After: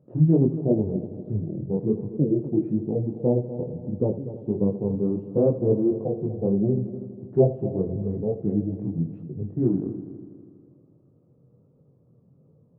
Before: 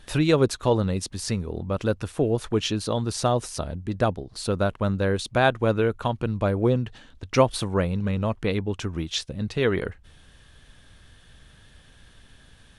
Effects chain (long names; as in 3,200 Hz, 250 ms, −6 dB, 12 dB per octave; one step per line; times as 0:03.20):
Chebyshev band-pass filter 130–720 Hz, order 3
formants moved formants −5 semitones
multi-voice chorus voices 2, 1.4 Hz, delay 22 ms, depth 3.2 ms
echo machine with several playback heads 81 ms, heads first and third, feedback 58%, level −14 dB
level +5 dB